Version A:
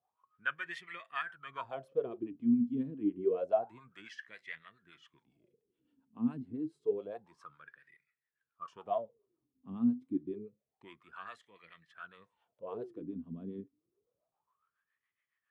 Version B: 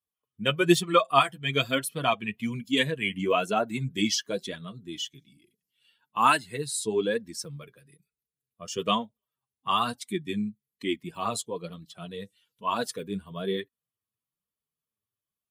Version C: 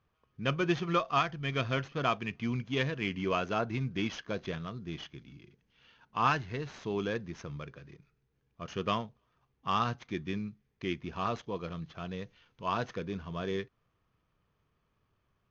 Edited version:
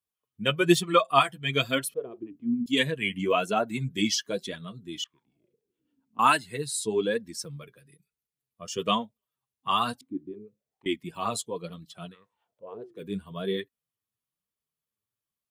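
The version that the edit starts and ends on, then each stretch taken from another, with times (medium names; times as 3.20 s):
B
1.94–2.66 s: from A
5.04–6.19 s: from A
10.01–10.86 s: from A
12.11–13.00 s: from A, crossfade 0.10 s
not used: C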